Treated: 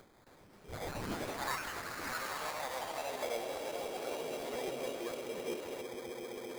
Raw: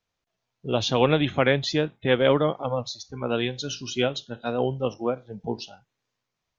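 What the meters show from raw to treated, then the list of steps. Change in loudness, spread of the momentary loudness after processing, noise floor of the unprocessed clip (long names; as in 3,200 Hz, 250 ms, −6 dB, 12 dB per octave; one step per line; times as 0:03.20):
−14.5 dB, 6 LU, −83 dBFS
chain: spectral tilt +4.5 dB per octave
phase shifter 0.32 Hz, delay 1.1 ms, feedback 58%
downward compressor, threshold −30 dBFS, peak gain reduction 16 dB
echo that builds up and dies away 131 ms, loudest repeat 8, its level −14 dB
hard clipping −28.5 dBFS, distortion −12 dB
high-shelf EQ 5,600 Hz −9 dB
brickwall limiter −36.5 dBFS, peak gain reduction 8 dB
band-pass filter sweep 3,000 Hz → 410 Hz, 0:00.38–0:04.13
sample-rate reduction 2,800 Hz, jitter 0%
upward compression, threshold −59 dBFS
delay with pitch and tempo change per echo 267 ms, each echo +3 semitones, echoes 3
regular buffer underruns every 0.14 s, samples 512, repeat, from 0:00.75
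level +9.5 dB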